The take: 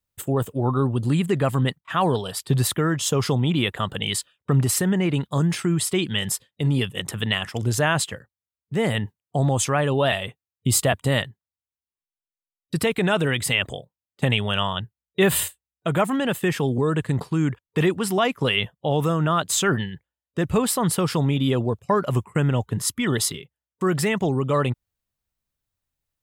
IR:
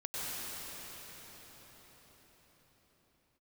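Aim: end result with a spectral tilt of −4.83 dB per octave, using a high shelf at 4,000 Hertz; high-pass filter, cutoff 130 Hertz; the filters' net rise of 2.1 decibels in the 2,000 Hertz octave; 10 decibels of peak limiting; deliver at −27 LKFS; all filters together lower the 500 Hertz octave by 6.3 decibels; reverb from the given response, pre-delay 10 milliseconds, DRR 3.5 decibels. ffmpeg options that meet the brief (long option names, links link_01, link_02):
-filter_complex "[0:a]highpass=130,equalizer=frequency=500:width_type=o:gain=-8.5,equalizer=frequency=2000:width_type=o:gain=5,highshelf=frequency=4000:gain=-7.5,alimiter=limit=-16.5dB:level=0:latency=1,asplit=2[link_01][link_02];[1:a]atrim=start_sample=2205,adelay=10[link_03];[link_02][link_03]afir=irnorm=-1:irlink=0,volume=-8.5dB[link_04];[link_01][link_04]amix=inputs=2:normalize=0,volume=-0.5dB"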